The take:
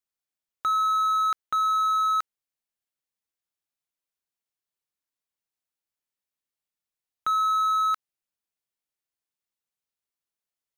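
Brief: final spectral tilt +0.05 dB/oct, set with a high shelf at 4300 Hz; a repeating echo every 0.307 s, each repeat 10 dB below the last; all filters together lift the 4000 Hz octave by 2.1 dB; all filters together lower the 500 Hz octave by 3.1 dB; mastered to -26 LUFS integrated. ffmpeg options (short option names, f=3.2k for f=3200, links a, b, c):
-af "equalizer=f=500:t=o:g=-4,equalizer=f=4k:t=o:g=4,highshelf=f=4.3k:g=-4,aecho=1:1:307|614|921|1228:0.316|0.101|0.0324|0.0104,volume=-3dB"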